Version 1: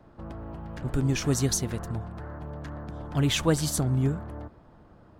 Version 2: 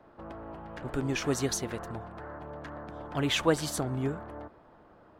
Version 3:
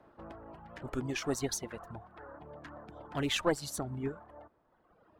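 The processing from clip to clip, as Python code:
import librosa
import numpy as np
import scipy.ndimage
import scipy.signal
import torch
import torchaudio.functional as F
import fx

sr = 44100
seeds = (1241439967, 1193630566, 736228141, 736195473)

y1 = fx.bass_treble(x, sr, bass_db=-12, treble_db=-8)
y1 = y1 * librosa.db_to_amplitude(1.5)
y2 = fx.tube_stage(y1, sr, drive_db=18.0, bias=0.65)
y2 = fx.dereverb_blind(y2, sr, rt60_s=1.5)
y2 = fx.record_warp(y2, sr, rpm=45.0, depth_cents=100.0)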